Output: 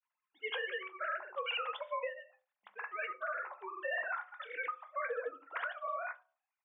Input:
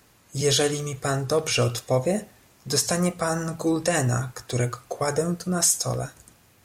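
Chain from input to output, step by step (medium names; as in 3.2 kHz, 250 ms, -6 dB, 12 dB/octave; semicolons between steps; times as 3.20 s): formants replaced by sine waves; granulator 100 ms, grains 20 per s, pitch spread up and down by 0 st; gate -50 dBFS, range -18 dB; ladder high-pass 780 Hz, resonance 40%; on a send at -8 dB: reverberation RT60 0.40 s, pre-delay 3 ms; on the sum: dynamic bell 1.8 kHz, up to +5 dB, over -48 dBFS, Q 1.1; peak limiter -29.5 dBFS, peak gain reduction 11 dB; trim +1 dB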